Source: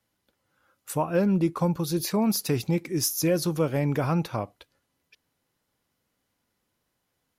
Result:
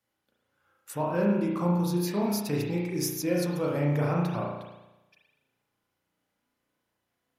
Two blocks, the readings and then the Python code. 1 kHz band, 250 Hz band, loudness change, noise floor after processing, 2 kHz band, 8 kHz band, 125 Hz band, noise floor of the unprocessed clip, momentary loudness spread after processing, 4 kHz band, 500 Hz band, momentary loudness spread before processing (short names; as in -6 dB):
-1.5 dB, -2.0 dB, -2.0 dB, -81 dBFS, -1.5 dB, -6.5 dB, -1.5 dB, -78 dBFS, 8 LU, -6.0 dB, -2.0 dB, 7 LU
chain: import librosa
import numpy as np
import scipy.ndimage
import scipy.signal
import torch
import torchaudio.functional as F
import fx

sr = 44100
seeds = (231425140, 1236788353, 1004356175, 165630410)

y = fx.low_shelf(x, sr, hz=72.0, db=-10.5)
y = fx.rev_spring(y, sr, rt60_s=1.0, pass_ms=(34,), chirp_ms=80, drr_db=-3.5)
y = F.gain(torch.from_numpy(y), -6.5).numpy()